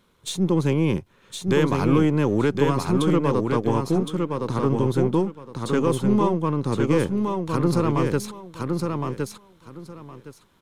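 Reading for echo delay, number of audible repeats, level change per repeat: 1.064 s, 3, -14.0 dB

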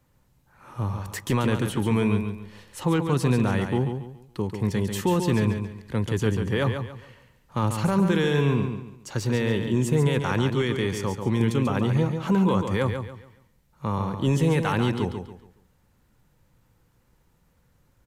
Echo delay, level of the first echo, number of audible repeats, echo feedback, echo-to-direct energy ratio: 0.14 s, -7.0 dB, 3, 32%, -6.5 dB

